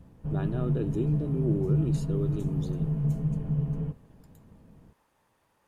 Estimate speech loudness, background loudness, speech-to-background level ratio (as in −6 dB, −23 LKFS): −34.0 LKFS, −29.5 LKFS, −4.5 dB